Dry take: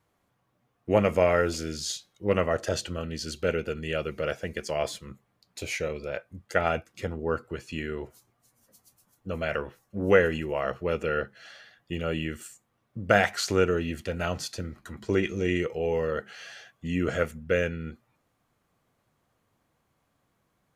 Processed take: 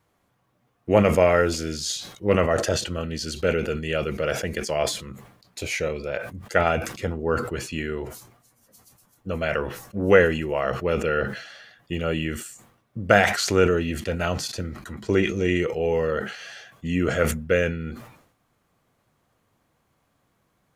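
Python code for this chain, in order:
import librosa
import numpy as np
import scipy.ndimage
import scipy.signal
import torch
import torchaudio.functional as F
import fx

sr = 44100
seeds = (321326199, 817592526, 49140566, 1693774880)

y = fx.sustainer(x, sr, db_per_s=82.0)
y = y * librosa.db_to_amplitude(4.0)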